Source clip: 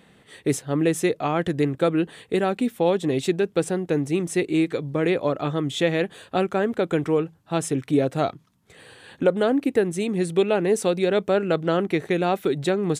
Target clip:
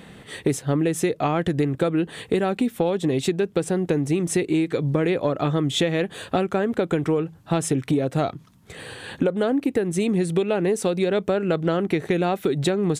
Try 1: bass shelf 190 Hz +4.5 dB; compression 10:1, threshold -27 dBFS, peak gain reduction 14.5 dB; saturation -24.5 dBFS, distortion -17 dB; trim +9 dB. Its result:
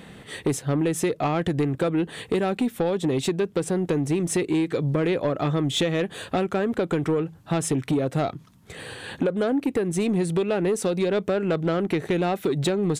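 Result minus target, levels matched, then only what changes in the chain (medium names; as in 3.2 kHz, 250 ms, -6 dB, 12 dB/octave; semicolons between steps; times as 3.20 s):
saturation: distortion +16 dB
change: saturation -14.5 dBFS, distortion -33 dB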